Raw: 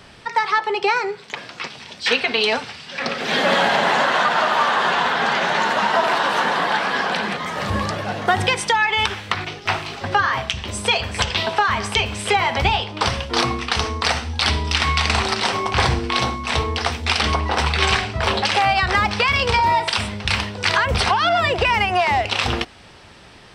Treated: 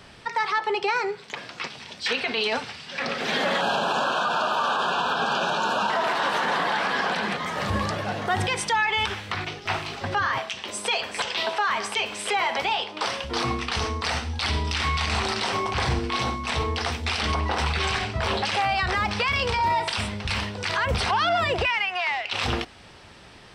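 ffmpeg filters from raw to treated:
-filter_complex "[0:a]asettb=1/sr,asplit=3[a][b][c];[a]atrim=end=3.614[d];[b]atrim=start=3.61:end=5.9,asetpts=PTS-STARTPTS,afade=t=in:d=0.004:c=qsin,afade=t=out:st=2.286:d=0.004:c=qsin,asuperstop=centerf=2000:order=8:qfactor=2.7[e];[c]atrim=start=5.896[f];[d][e]acrossfade=d=0.004:c1=hsin:c2=qsin[g];[g][f]acrossfade=d=0.004:c1=qsin:c2=hsin,asettb=1/sr,asplit=3[h][i][j];[h]atrim=end=10.384[k];[i]atrim=start=10.38:end=13.24,asetpts=PTS-STARTPTS,afade=t=in:d=0.004:c=qsin,afade=t=out:st=2.856:d=0.004:c=qsin,highpass=320[l];[j]atrim=start=13.236[m];[k][l]acrossfade=d=0.004:c1=hsin:c2=qsin[n];[n][m]acrossfade=d=0.004:c1=qsin:c2=hsin,asplit=3[o][p][q];[o]afade=t=out:st=21.65:d=0.02[r];[p]bandpass=f=2.5k:t=q:w=0.87,afade=t=in:st=21.65:d=0.02,afade=t=out:st=22.32:d=0.02[s];[q]afade=t=in:st=22.32:d=0.02[t];[r][s][t]amix=inputs=3:normalize=0,alimiter=limit=-12.5dB:level=0:latency=1:release=25,volume=-3dB"

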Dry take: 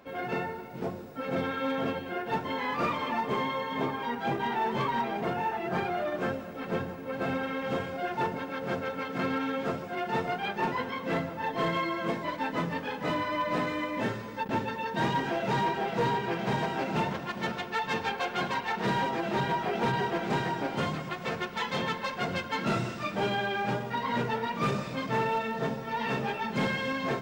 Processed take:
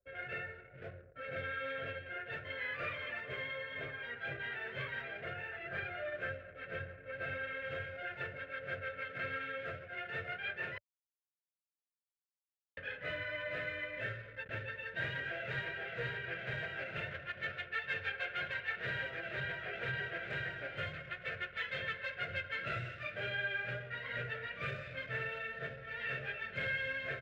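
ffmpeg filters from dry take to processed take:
-filter_complex "[0:a]asplit=3[a][b][c];[a]atrim=end=10.78,asetpts=PTS-STARTPTS,afade=t=out:st=10.776:d=0.004:c=hsin[d];[b]atrim=start=10.78:end=12.77,asetpts=PTS-STARTPTS,volume=0[e];[c]atrim=start=12.77,asetpts=PTS-STARTPTS,afade=t=in:d=0.004:c=hsin[f];[d][e][f]concat=n=3:v=0:a=1,highpass=40,anlmdn=0.0631,firequalizer=gain_entry='entry(100,0);entry(210,-25);entry(580,-4);entry(890,-28);entry(1500,2);entry(2600,-1);entry(5400,-19)':delay=0.05:min_phase=1,volume=-3dB"

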